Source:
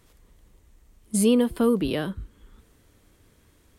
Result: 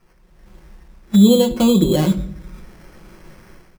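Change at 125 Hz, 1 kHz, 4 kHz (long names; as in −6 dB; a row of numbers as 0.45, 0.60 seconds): +14.5, +7.0, +10.5 decibels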